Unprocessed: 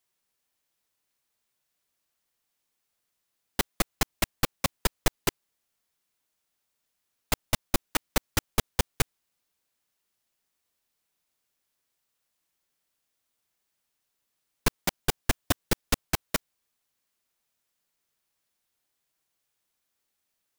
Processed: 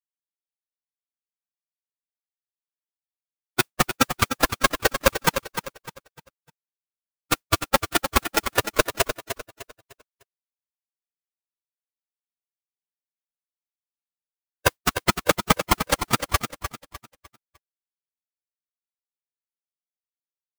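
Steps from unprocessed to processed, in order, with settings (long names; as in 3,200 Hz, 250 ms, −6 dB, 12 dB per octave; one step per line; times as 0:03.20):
spectral dynamics exaggerated over time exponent 3
parametric band 740 Hz +12 dB 1.5 octaves
in parallel at +3 dB: downward compressor, threshold −34 dBFS, peak gain reduction 13.5 dB
on the sum: noise that follows the level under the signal 33 dB
repeating echo 302 ms, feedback 33%, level −9 dB
ring modulator with a square carrier 540 Hz
level +5.5 dB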